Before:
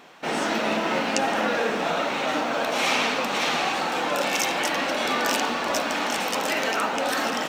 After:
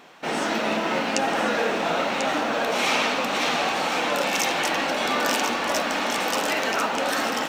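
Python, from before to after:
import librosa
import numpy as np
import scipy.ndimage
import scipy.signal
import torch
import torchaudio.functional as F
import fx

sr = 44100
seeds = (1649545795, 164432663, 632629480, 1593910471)

y = x + 10.0 ** (-7.0 / 20.0) * np.pad(x, (int(1042 * sr / 1000.0), 0))[:len(x)]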